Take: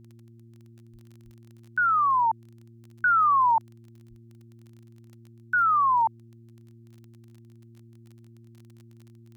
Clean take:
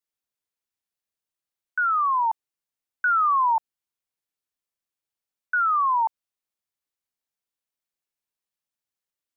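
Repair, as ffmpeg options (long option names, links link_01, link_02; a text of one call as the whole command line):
ffmpeg -i in.wav -filter_complex "[0:a]adeclick=threshold=4,bandreject=frequency=115.4:width_type=h:width=4,bandreject=frequency=230.8:width_type=h:width=4,bandreject=frequency=346.2:width_type=h:width=4,asplit=3[link_01][link_02][link_03];[link_01]afade=type=out:start_time=0.92:duration=0.02[link_04];[link_02]highpass=frequency=140:width=0.5412,highpass=frequency=140:width=1.3066,afade=type=in:start_time=0.92:duration=0.02,afade=type=out:start_time=1.04:duration=0.02[link_05];[link_03]afade=type=in:start_time=1.04:duration=0.02[link_06];[link_04][link_05][link_06]amix=inputs=3:normalize=0,asplit=3[link_07][link_08][link_09];[link_07]afade=type=out:start_time=1.24:duration=0.02[link_10];[link_08]highpass=frequency=140:width=0.5412,highpass=frequency=140:width=1.3066,afade=type=in:start_time=1.24:duration=0.02,afade=type=out:start_time=1.36:duration=0.02[link_11];[link_09]afade=type=in:start_time=1.36:duration=0.02[link_12];[link_10][link_11][link_12]amix=inputs=3:normalize=0,asplit=3[link_13][link_14][link_15];[link_13]afade=type=out:start_time=4.09:duration=0.02[link_16];[link_14]highpass=frequency=140:width=0.5412,highpass=frequency=140:width=1.3066,afade=type=in:start_time=4.09:duration=0.02,afade=type=out:start_time=4.21:duration=0.02[link_17];[link_15]afade=type=in:start_time=4.21:duration=0.02[link_18];[link_16][link_17][link_18]amix=inputs=3:normalize=0" out.wav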